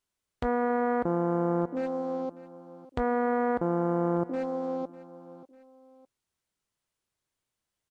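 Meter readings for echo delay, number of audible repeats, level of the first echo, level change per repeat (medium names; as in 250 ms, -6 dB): 598 ms, 2, -18.0 dB, -6.0 dB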